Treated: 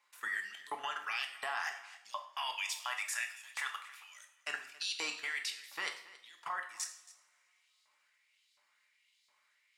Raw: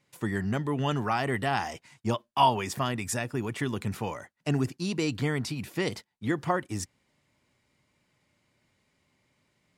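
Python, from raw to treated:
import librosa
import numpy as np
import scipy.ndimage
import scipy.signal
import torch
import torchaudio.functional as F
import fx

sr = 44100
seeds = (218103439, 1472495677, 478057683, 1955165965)

p1 = fx.highpass(x, sr, hz=690.0, slope=24, at=(2.54, 4.2))
p2 = fx.filter_lfo_highpass(p1, sr, shape='saw_up', hz=1.4, low_hz=940.0, high_hz=4400.0, q=2.5)
p3 = fx.level_steps(p2, sr, step_db=19)
p4 = p3 + fx.echo_single(p3, sr, ms=276, db=-19.0, dry=0)
y = fx.rev_double_slope(p4, sr, seeds[0], early_s=0.55, late_s=2.9, knee_db=-28, drr_db=3.5)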